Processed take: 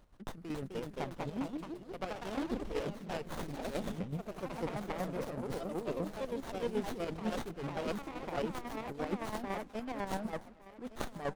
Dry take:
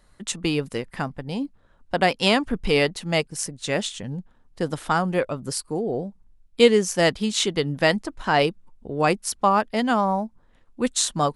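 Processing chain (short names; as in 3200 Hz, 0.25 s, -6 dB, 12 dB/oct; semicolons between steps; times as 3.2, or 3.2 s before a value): dynamic EQ 4700 Hz, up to -5 dB, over -38 dBFS, Q 0.87; reverse; compressor 6:1, threshold -30 dBFS, peak gain reduction 19 dB; reverse; outdoor echo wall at 46 m, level -25 dB; chopper 8 Hz, depth 60%, duty 35%; on a send: feedback echo 1.16 s, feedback 34%, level -16.5 dB; on the sum: echoes that change speed 0.306 s, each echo +2 st, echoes 3; running maximum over 17 samples; gain -2 dB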